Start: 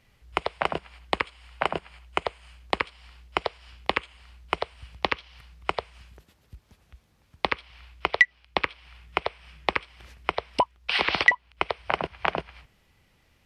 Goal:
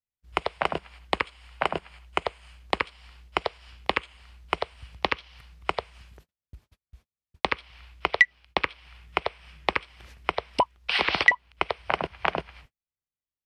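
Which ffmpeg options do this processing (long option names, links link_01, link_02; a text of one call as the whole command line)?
ffmpeg -i in.wav -af "agate=range=-40dB:threshold=-52dB:ratio=16:detection=peak" out.wav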